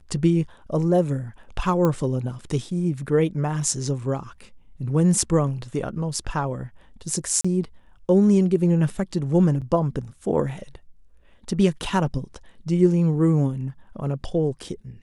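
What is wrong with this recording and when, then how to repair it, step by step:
1.85 s: pop -11 dBFS
7.41–7.45 s: dropout 35 ms
9.61–9.62 s: dropout 7.3 ms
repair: de-click; interpolate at 7.41 s, 35 ms; interpolate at 9.61 s, 7.3 ms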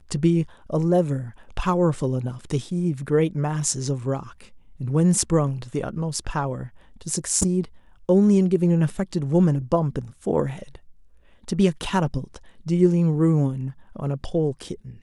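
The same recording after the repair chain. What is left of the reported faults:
nothing left

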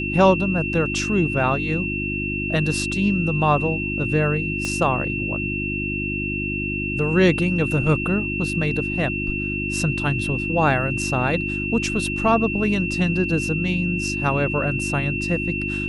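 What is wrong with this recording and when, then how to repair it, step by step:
hum 50 Hz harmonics 7 -28 dBFS
whine 2.7 kHz -26 dBFS
4.65 s: pop -13 dBFS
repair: de-click; de-hum 50 Hz, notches 7; band-stop 2.7 kHz, Q 30

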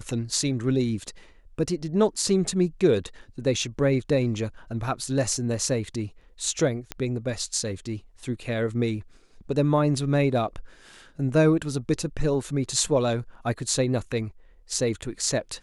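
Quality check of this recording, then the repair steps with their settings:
6.92 s: pop -14 dBFS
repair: de-click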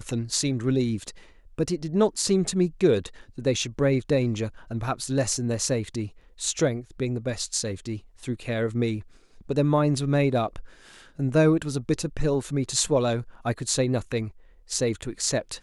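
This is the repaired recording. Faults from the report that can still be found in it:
nothing left

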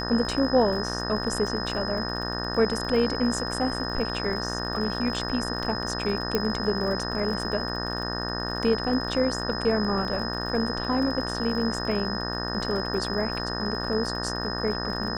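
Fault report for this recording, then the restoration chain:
buzz 60 Hz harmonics 31 -32 dBFS
crackle 47 per s -34 dBFS
whine 5.1 kHz -33 dBFS
6.35 s: pop -10 dBFS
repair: de-click; band-stop 5.1 kHz, Q 30; de-hum 60 Hz, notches 31

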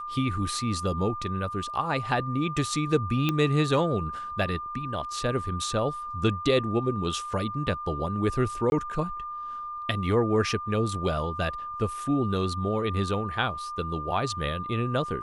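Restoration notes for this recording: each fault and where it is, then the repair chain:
whine 1.2 kHz -33 dBFS
3.29 s: pop -12 dBFS
8.70–8.72 s: dropout 21 ms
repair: de-click; band-stop 1.2 kHz, Q 30; interpolate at 8.70 s, 21 ms

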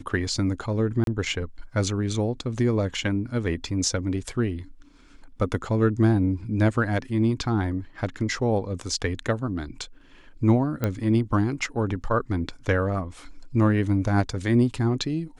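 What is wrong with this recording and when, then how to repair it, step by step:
1.04–1.07 s: dropout 32 ms
10.84 s: pop -12 dBFS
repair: de-click; interpolate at 1.04 s, 32 ms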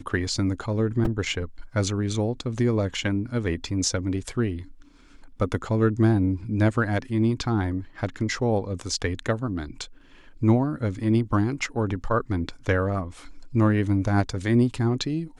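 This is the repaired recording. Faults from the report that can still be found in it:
nothing left

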